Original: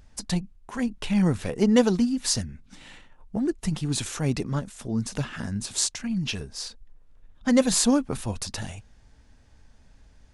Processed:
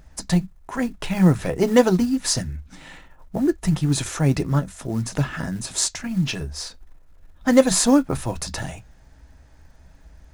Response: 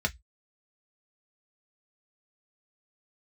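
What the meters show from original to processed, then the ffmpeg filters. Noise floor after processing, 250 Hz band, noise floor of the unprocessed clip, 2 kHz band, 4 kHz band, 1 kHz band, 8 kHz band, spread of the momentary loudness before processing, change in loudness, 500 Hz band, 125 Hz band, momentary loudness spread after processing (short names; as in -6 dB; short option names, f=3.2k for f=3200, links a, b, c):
-51 dBFS, +3.5 dB, -56 dBFS, +5.0 dB, +2.0 dB, +6.5 dB, +3.0 dB, 15 LU, +4.5 dB, +6.0 dB, +6.5 dB, 15 LU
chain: -filter_complex "[0:a]acrusher=bits=7:mode=log:mix=0:aa=0.000001,asplit=2[a][b];[1:a]atrim=start_sample=2205[c];[b][c]afir=irnorm=-1:irlink=0,volume=-14dB[d];[a][d]amix=inputs=2:normalize=0,volume=4.5dB"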